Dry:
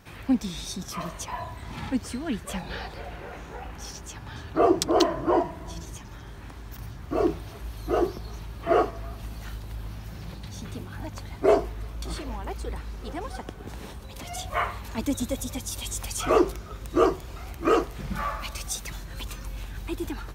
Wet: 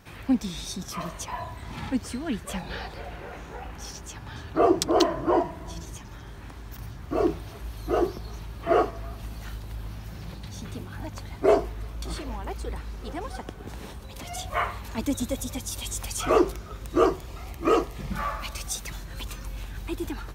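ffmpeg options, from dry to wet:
-filter_complex "[0:a]asettb=1/sr,asplit=3[a][b][c];[a]atrim=end=17.264[d];[b]atrim=start=17.26:end=18.12,asetpts=PTS-STARTPTS,afade=t=in:d=0.004:c=qsin,afade=t=out:st=0.856:d=0.004:c=qsin,asuperstop=centerf=1500:order=4:qfactor=6.8[e];[c]atrim=start=18.116[f];[d][e]acrossfade=d=0.004:c1=hsin:c2=qsin[g];[g][f]acrossfade=d=0.004:c1=qsin:c2=hsin"

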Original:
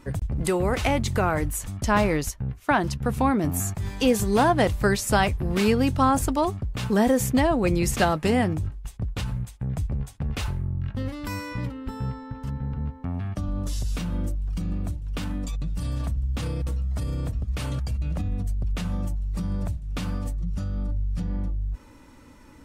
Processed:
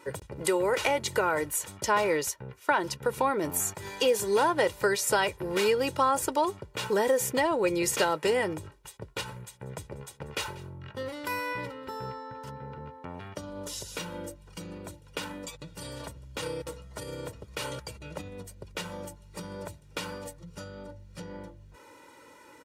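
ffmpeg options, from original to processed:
-filter_complex "[0:a]asettb=1/sr,asplit=3[a][b][c];[a]atrim=end=9.274[d];[b]atrim=start=9.27:end=12.03,asetpts=PTS-STARTPTS,afade=t=in:d=0.004:c=qsin,afade=t=out:st=2.756:d=0.004:c=qsin,aecho=1:1:188:0.0891,atrim=end_sample=121716[e];[c]atrim=start=12.026[f];[d][e]acrossfade=d=0.004:c1=hsin:c2=qsin[g];[g][f]acrossfade=d=0.004:c1=qsin:c2=hsin,highpass=290,aecho=1:1:2.1:0.66,acompressor=threshold=-24dB:ratio=2"

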